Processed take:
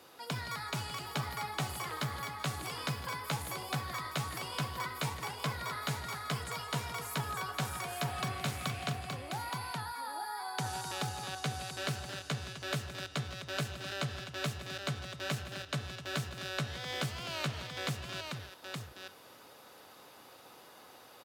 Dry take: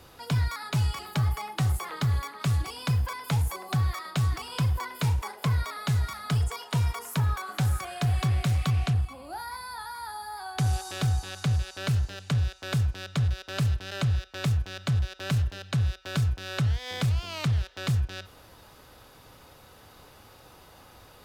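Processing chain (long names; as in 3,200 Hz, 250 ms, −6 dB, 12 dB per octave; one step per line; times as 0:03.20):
high-pass filter 240 Hz 12 dB per octave
multi-tap delay 152/169/256/871 ms −19/−13/−11.5/−4.5 dB
level −3.5 dB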